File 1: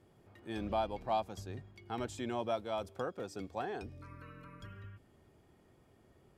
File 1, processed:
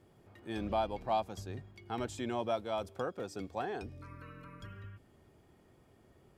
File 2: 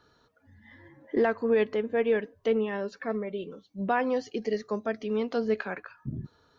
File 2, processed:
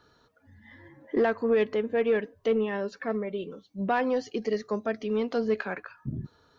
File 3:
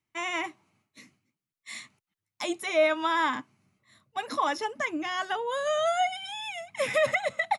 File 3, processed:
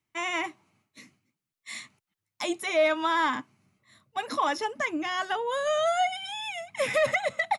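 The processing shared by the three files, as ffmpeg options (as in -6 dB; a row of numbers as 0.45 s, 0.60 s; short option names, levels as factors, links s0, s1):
-af "asoftclip=type=tanh:threshold=0.158,volume=1.19"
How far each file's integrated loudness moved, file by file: +1.5 LU, +0.5 LU, +0.5 LU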